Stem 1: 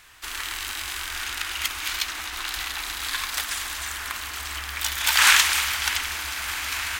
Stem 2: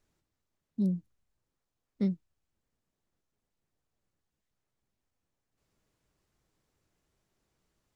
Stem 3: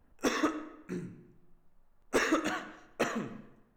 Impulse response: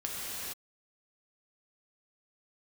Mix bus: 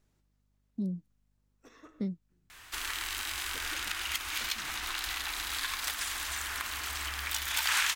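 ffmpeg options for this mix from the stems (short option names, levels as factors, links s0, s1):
-filter_complex "[0:a]adelay=2500,volume=0.891[s0];[1:a]aeval=exprs='val(0)+0.0002*(sin(2*PI*50*n/s)+sin(2*PI*2*50*n/s)/2+sin(2*PI*3*50*n/s)/3+sin(2*PI*4*50*n/s)/4+sin(2*PI*5*50*n/s)/5)':c=same,volume=1.12,asplit=2[s1][s2];[2:a]asubboost=boost=8.5:cutoff=130,adelay=1400,volume=0.133[s3];[s2]apad=whole_len=227838[s4];[s3][s4]sidechaincompress=threshold=0.00251:ratio=6:attack=16:release=716[s5];[s0][s1][s5]amix=inputs=3:normalize=0,acompressor=threshold=0.0178:ratio=2"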